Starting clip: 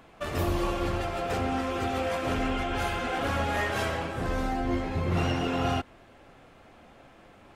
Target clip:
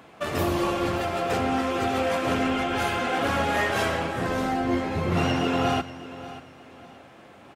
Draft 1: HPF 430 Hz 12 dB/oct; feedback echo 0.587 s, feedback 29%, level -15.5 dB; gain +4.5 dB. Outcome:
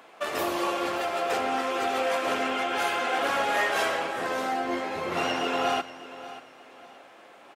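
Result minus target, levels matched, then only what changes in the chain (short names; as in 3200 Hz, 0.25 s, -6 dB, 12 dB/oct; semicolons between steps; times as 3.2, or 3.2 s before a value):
125 Hz band -16.5 dB
change: HPF 110 Hz 12 dB/oct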